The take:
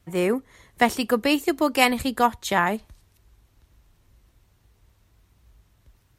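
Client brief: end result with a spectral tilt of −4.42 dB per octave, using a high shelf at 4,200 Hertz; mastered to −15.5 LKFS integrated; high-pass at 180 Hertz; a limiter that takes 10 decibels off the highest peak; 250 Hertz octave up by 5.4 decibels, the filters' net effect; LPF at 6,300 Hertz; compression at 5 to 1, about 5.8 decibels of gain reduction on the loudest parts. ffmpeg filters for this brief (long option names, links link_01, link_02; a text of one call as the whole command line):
ffmpeg -i in.wav -af "highpass=180,lowpass=6300,equalizer=frequency=250:width_type=o:gain=7.5,highshelf=frequency=4200:gain=4,acompressor=threshold=-18dB:ratio=5,volume=12dB,alimiter=limit=-5.5dB:level=0:latency=1" out.wav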